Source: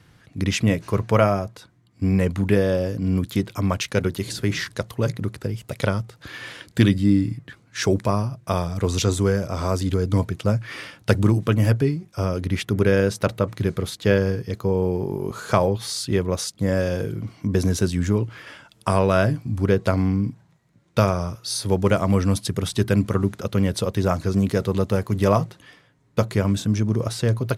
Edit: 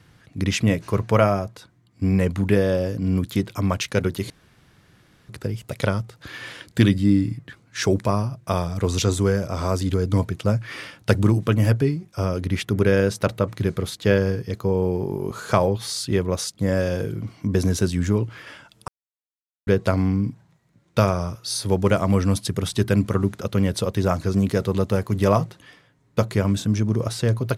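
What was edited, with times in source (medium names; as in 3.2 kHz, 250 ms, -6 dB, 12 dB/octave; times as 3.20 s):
4.30–5.29 s: room tone
18.88–19.67 s: mute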